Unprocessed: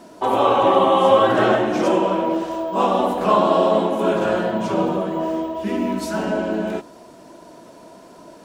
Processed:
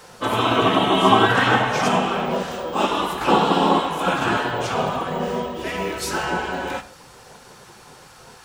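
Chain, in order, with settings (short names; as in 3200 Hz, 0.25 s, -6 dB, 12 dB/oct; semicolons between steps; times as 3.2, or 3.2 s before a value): spectral gate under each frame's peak -10 dB weak; reverb RT60 0.40 s, pre-delay 6 ms, DRR 10 dB; gain +6.5 dB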